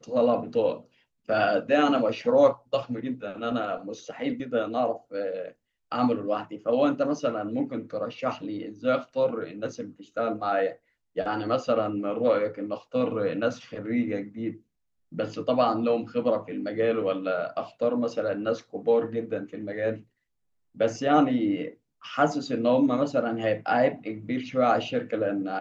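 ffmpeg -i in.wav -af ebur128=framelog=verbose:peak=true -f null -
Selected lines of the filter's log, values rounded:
Integrated loudness:
  I:         -27.0 LUFS
  Threshold: -37.3 LUFS
Loudness range:
  LRA:         4.4 LU
  Threshold: -47.6 LUFS
  LRA low:   -29.8 LUFS
  LRA high:  -25.4 LUFS
True peak:
  Peak:       -7.9 dBFS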